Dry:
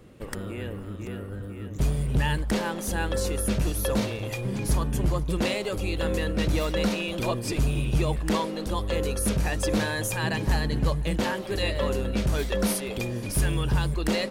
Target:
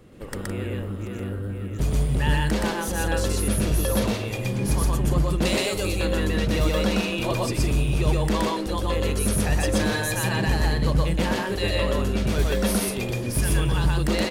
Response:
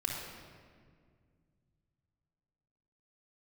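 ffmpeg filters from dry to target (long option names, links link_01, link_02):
-filter_complex "[0:a]asettb=1/sr,asplit=3[link_01][link_02][link_03];[link_01]atrim=end=5.454[link_04];[link_02]atrim=start=5.45:end=5.93,asetpts=PTS-STARTPTS,afade=type=in:duration=0.004:curve=qsin,afade=type=out:start_time=0.476:duration=0.004:curve=qsin,bass=frequency=250:gain=-1,treble=frequency=4000:gain=8[link_05];[link_03]atrim=start=5.926[link_06];[link_04][link_05]acrossfade=duration=0.004:curve1=hsin:curve2=qsin[link_07];[link_07][link_06]acrossfade=duration=0.004:curve1=qsin:curve2=hsin,asplit=2[link_08][link_09];[link_09]aecho=0:1:122.4|163.3:1|0.316[link_10];[link_08][link_10]amix=inputs=2:normalize=0"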